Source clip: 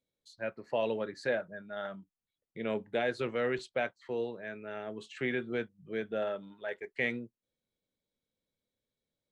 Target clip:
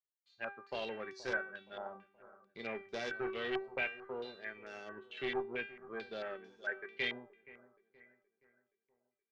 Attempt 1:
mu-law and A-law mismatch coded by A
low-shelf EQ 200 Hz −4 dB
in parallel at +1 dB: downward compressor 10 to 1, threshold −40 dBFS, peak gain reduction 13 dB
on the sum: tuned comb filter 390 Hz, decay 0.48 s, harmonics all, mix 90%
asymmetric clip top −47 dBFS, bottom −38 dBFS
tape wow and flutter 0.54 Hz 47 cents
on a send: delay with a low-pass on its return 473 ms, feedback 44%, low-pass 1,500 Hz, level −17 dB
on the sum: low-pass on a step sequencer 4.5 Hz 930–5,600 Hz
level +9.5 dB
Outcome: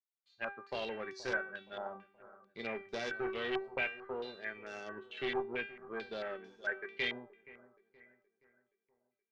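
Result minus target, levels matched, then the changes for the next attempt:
downward compressor: peak gain reduction −9.5 dB
change: downward compressor 10 to 1, threshold −50.5 dBFS, peak gain reduction 22.5 dB

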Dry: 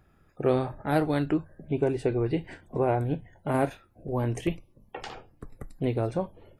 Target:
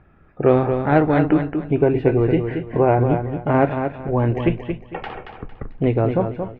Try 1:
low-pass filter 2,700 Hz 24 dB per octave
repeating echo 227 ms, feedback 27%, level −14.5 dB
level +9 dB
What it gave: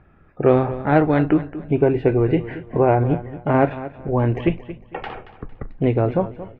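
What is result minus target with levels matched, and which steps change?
echo-to-direct −7.5 dB
change: repeating echo 227 ms, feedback 27%, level −7 dB

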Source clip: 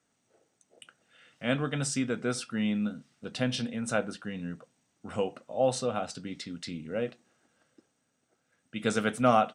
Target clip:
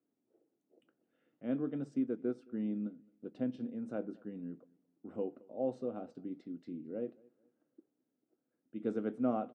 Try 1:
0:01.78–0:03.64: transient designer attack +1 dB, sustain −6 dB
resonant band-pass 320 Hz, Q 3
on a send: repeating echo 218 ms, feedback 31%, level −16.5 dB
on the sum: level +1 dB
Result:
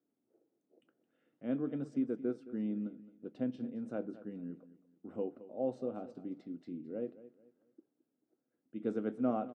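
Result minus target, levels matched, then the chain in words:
echo-to-direct +9.5 dB
0:01.78–0:03.64: transient designer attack +1 dB, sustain −6 dB
resonant band-pass 320 Hz, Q 3
on a send: repeating echo 218 ms, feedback 31%, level −26 dB
on the sum: level +1 dB

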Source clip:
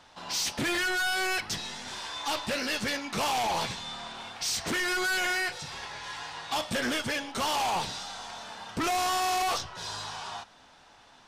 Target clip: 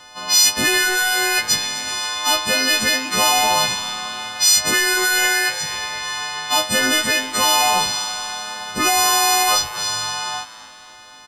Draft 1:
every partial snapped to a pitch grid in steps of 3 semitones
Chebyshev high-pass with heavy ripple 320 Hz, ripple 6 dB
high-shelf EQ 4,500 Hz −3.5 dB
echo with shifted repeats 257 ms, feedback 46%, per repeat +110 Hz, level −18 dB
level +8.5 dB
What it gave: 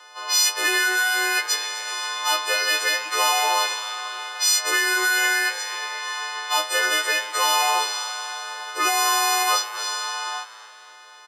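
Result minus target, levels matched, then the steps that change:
250 Hz band −7.0 dB
remove: Chebyshev high-pass with heavy ripple 320 Hz, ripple 6 dB

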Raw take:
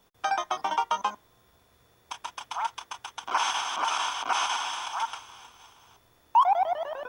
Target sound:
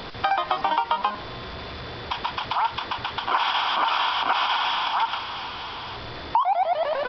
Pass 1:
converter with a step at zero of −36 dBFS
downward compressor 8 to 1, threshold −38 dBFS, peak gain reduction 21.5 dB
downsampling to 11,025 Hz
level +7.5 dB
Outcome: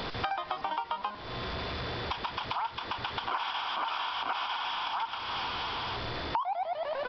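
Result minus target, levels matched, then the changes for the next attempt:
downward compressor: peak gain reduction +10.5 dB
change: downward compressor 8 to 1, threshold −26 dBFS, peak gain reduction 11 dB

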